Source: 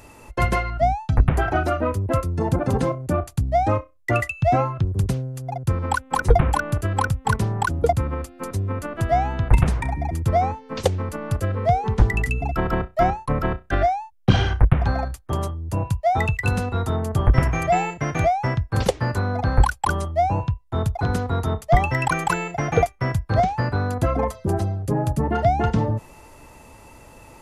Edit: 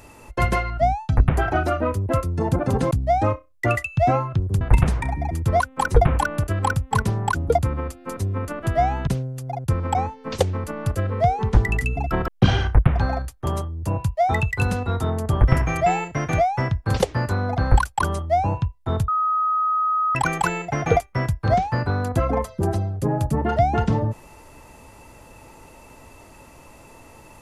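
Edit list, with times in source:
2.91–3.36 s: delete
5.06–5.94 s: swap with 9.41–10.40 s
12.73–14.14 s: delete
20.94–22.01 s: bleep 1.26 kHz -18 dBFS

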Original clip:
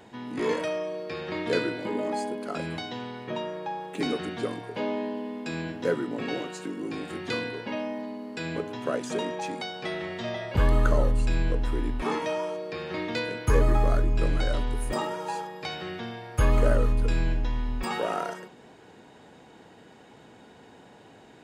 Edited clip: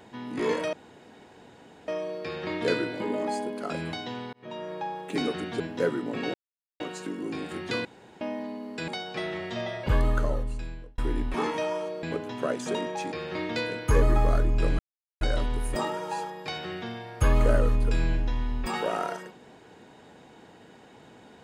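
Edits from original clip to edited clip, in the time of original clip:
0.73 s: insert room tone 1.15 s
3.18–3.59 s: fade in
4.45–5.65 s: delete
6.39 s: insert silence 0.46 s
7.44–7.80 s: room tone
8.47–9.56 s: move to 12.71 s
10.44–11.66 s: fade out
14.38 s: insert silence 0.42 s

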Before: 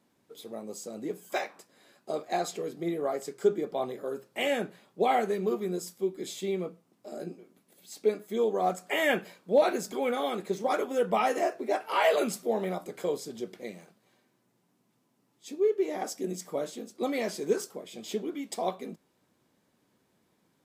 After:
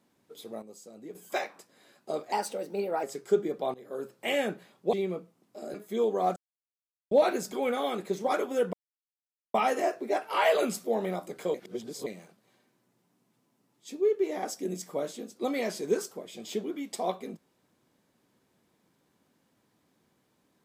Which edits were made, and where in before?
0.62–1.15 s: gain -9 dB
2.32–3.16 s: speed 118%
3.87–4.16 s: fade in, from -18 dB
5.06–6.43 s: delete
7.24–8.14 s: delete
8.76–9.51 s: mute
11.13 s: insert silence 0.81 s
13.13–13.65 s: reverse

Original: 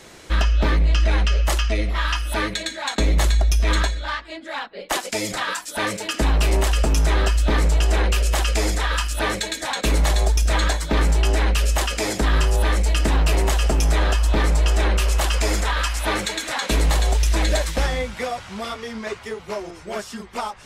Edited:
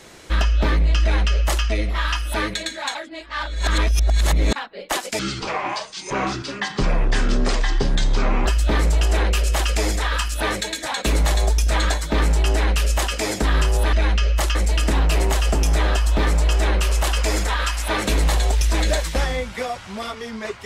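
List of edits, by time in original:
1.02–1.64 s: copy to 12.72 s
2.95–4.56 s: reverse
5.19–7.25 s: speed 63%
16.24–16.69 s: delete

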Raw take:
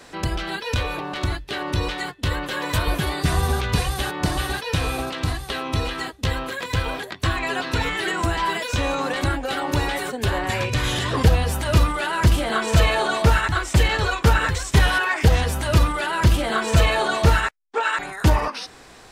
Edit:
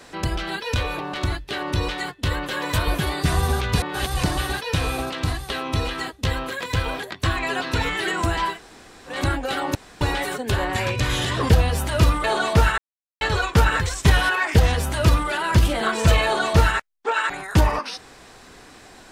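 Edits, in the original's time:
3.82–4.23 s: reverse
8.52–9.13 s: room tone, crossfade 0.16 s
9.75 s: insert room tone 0.26 s
11.98–12.93 s: delete
13.47–13.90 s: mute

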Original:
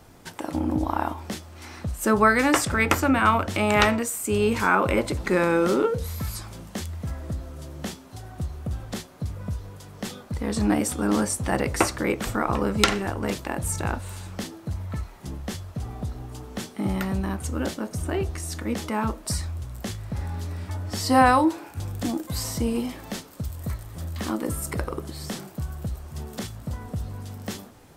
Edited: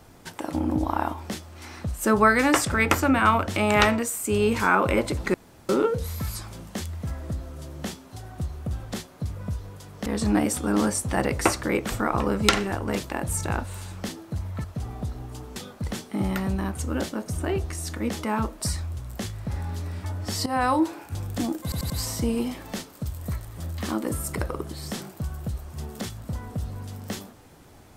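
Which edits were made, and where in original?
5.34–5.69 s: room tone
10.06–10.41 s: move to 16.56 s
14.99–15.64 s: delete
21.11–21.52 s: fade in, from -17 dB
22.28 s: stutter 0.09 s, 4 plays

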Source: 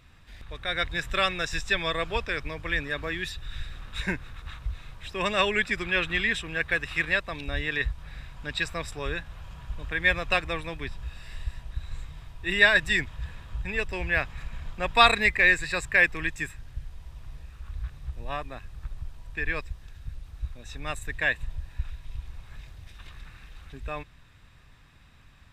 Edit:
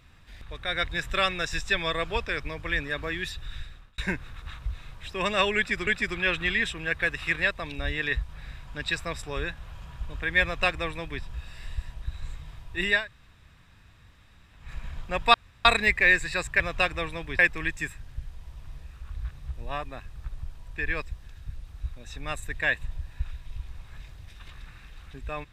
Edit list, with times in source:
3.47–3.98 s: fade out
5.56–5.87 s: loop, 2 plays
10.12–10.91 s: copy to 15.98 s
12.65–14.34 s: room tone, crossfade 0.24 s
15.03 s: insert room tone 0.31 s

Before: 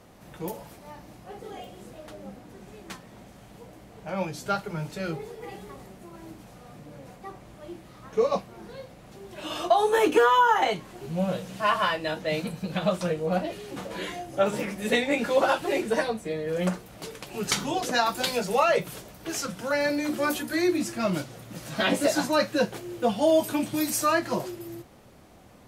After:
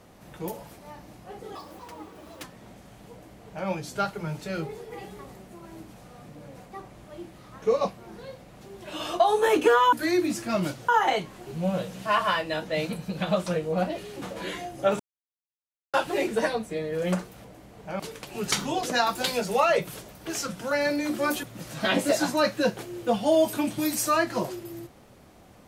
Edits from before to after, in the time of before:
1.55–2.94 s: speed 157%
3.63–4.18 s: copy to 16.99 s
14.54–15.48 s: mute
20.43–21.39 s: move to 10.43 s

